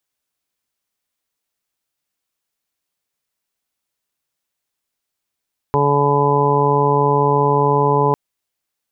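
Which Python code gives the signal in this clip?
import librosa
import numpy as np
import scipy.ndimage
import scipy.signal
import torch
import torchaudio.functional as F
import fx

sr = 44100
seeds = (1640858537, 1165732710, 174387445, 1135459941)

y = fx.additive_steady(sr, length_s=2.4, hz=143.0, level_db=-19, upper_db=(-6.0, 2.0, -6.0, -11.5, 0.0, 1))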